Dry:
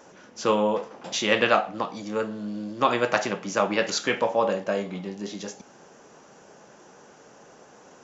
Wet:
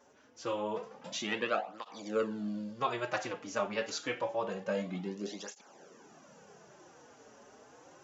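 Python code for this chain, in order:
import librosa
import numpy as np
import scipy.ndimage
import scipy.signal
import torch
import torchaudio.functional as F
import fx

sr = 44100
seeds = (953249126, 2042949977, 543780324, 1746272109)

y = fx.rider(x, sr, range_db=4, speed_s=0.5)
y = fx.flanger_cancel(y, sr, hz=0.27, depth_ms=6.3)
y = y * librosa.db_to_amplitude(-7.0)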